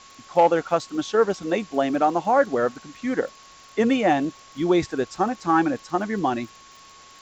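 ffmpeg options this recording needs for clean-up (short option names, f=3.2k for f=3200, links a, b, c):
-af "adeclick=t=4,bandreject=f=1.1k:w=30,afwtdn=0.005"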